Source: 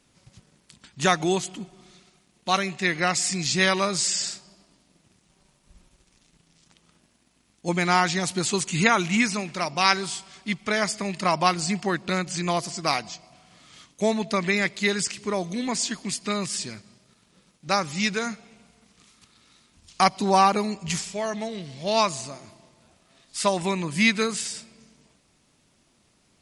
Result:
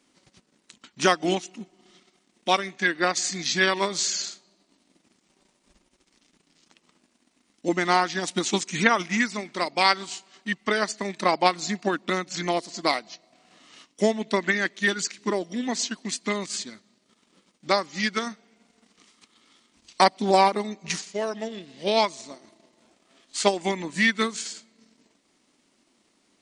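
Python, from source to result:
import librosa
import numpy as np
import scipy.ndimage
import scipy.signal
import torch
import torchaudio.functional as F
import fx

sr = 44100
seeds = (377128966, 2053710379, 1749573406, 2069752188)

y = fx.transient(x, sr, attack_db=4, sustain_db=-7)
y = fx.low_shelf_res(y, sr, hz=180.0, db=-13.0, q=1.5)
y = fx.formant_shift(y, sr, semitones=-2)
y = y * 10.0 ** (-1.5 / 20.0)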